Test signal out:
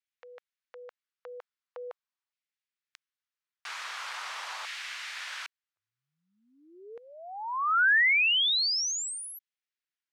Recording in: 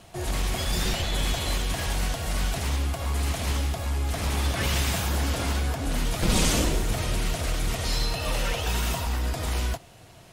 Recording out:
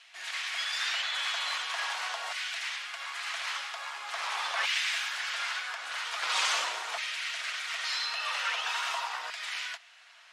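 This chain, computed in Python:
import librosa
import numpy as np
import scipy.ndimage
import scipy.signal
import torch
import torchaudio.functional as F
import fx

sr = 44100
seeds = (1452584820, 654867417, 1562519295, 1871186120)

y = fx.bandpass_edges(x, sr, low_hz=620.0, high_hz=5000.0)
y = fx.filter_lfo_highpass(y, sr, shape='saw_down', hz=0.43, low_hz=940.0, high_hz=2000.0, q=1.5)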